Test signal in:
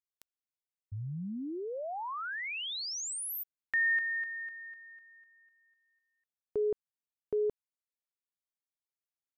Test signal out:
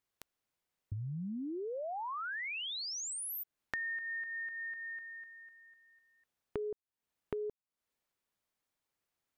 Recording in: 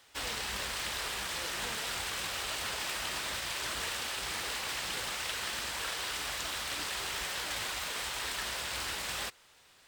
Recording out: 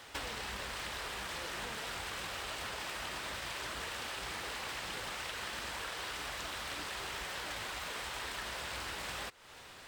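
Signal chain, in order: high shelf 2900 Hz -8 dB; compressor 6:1, threshold -52 dBFS; gain +12.5 dB

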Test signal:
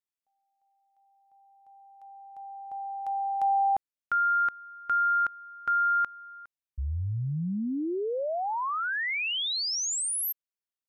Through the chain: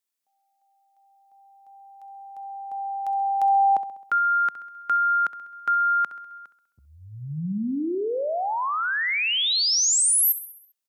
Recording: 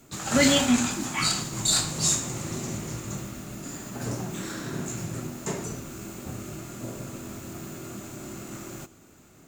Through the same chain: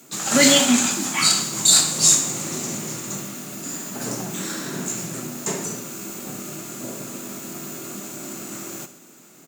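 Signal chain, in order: HPF 160 Hz 24 dB/oct; high shelf 3900 Hz +7.5 dB; feedback echo 66 ms, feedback 55%, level -14 dB; gain +3.5 dB

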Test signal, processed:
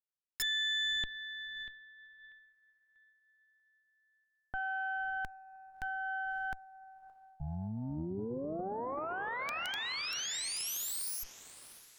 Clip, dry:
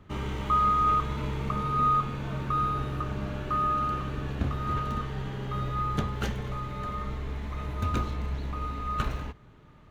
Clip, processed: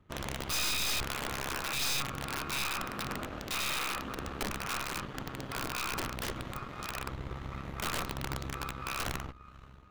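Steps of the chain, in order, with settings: diffused feedback echo 0.587 s, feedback 45%, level -14 dB; added harmonics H 3 -12 dB, 4 -41 dB, 5 -24 dB, 6 -9 dB, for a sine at -14 dBFS; wrapped overs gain 20.5 dB; gain -6 dB

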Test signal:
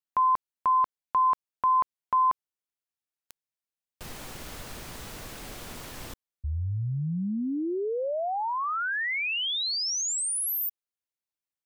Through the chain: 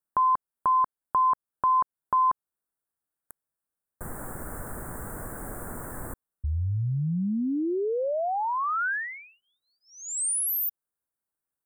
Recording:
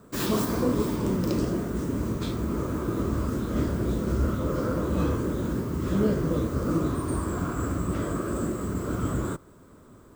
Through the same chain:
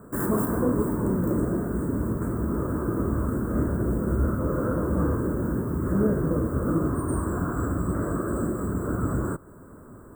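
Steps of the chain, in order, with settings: elliptic band-stop 1600–8400 Hz, stop band 50 dB; in parallel at -0.5 dB: compressor, threshold -38 dBFS

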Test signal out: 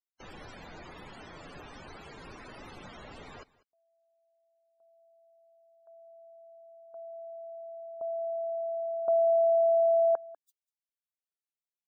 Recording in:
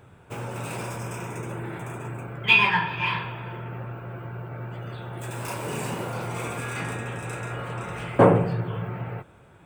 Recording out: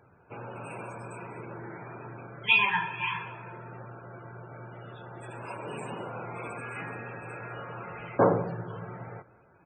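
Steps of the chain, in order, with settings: low shelf 190 Hz -8.5 dB; loudest bins only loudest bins 64; echo 0.195 s -21.5 dB; gain -4.5 dB

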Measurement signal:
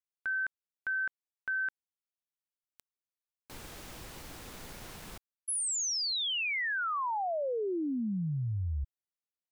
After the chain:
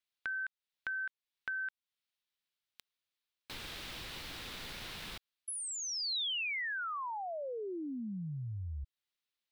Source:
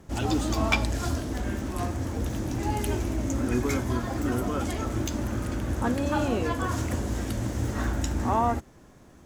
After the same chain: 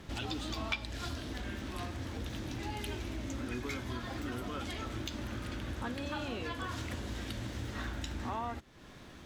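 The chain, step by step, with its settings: EQ curve 760 Hz 0 dB, 3800 Hz +12 dB, 6700 Hz -1 dB; compressor 2.5:1, threshold -42 dBFS

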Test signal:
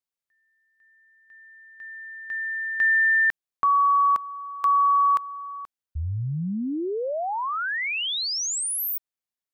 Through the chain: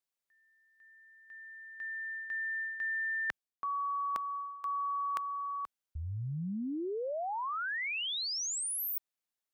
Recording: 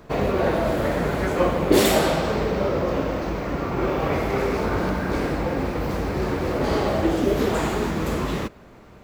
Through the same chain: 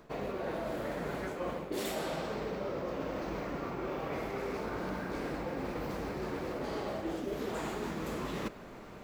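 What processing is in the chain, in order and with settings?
bell 73 Hz -9.5 dB 1.3 oct; reverse; compressor 6:1, threshold -35 dBFS; reverse

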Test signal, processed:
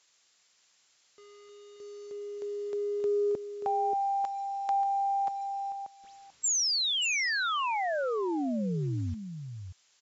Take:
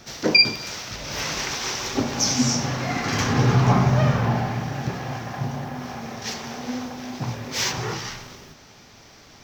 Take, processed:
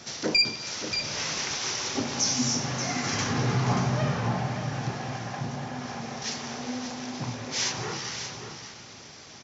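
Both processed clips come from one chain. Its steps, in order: HPF 91 Hz 12 dB/oct; high shelf 4500 Hz +6.5 dB; in parallel at +3 dB: compressor 6:1, threshold -35 dBFS; on the sum: bit-crush 8-bit; added noise blue -51 dBFS; soft clip -6 dBFS; brick-wall FIR low-pass 7600 Hz; on a send: echo 0.582 s -9 dB; on the sum: gain -8 dB

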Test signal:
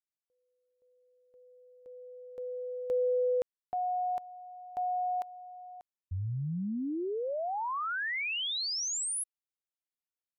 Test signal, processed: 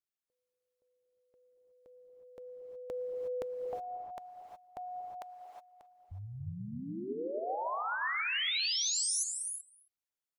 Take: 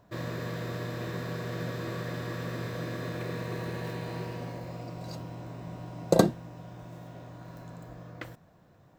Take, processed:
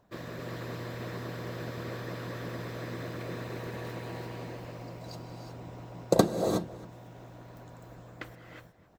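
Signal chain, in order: outdoor echo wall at 46 m, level -19 dB; non-linear reverb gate 0.39 s rising, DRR 1.5 dB; harmonic-percussive split harmonic -10 dB

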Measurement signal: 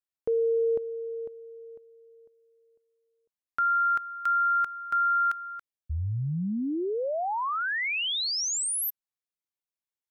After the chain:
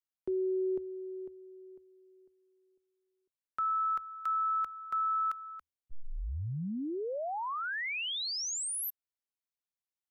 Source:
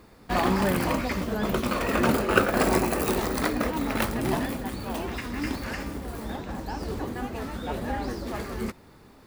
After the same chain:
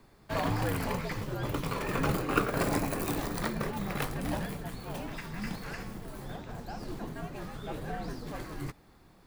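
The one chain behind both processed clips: frequency shift -83 Hz; gain -6.5 dB

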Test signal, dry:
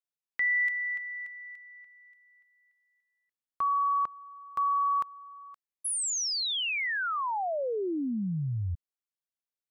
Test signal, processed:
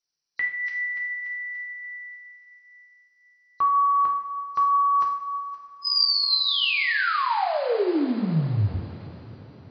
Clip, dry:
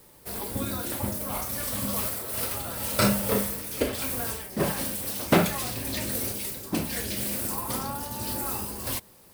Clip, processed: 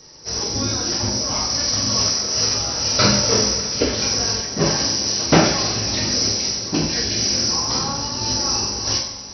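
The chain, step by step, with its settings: nonlinear frequency compression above 3900 Hz 4:1; two-slope reverb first 0.6 s, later 5 s, from -18 dB, DRR -1 dB; gain +3.5 dB

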